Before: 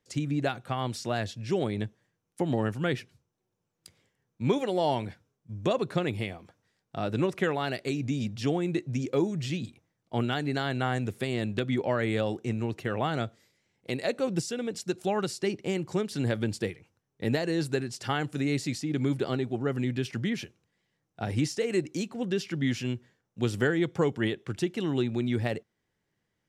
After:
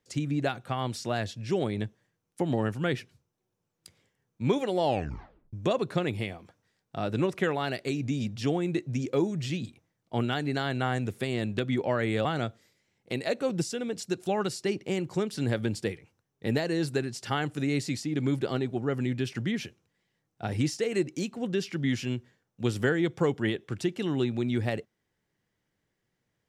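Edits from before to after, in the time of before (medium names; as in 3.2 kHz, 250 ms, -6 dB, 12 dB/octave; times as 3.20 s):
4.85 s: tape stop 0.68 s
12.25–13.03 s: delete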